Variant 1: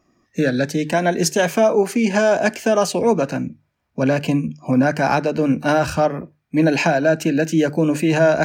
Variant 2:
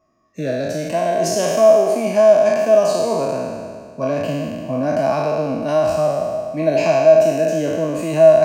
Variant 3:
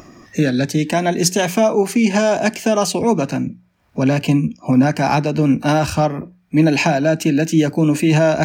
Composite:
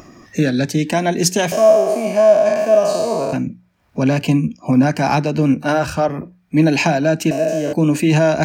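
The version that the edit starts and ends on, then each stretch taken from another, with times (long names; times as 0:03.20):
3
0:01.52–0:03.33: punch in from 2
0:05.54–0:06.09: punch in from 1
0:07.31–0:07.73: punch in from 2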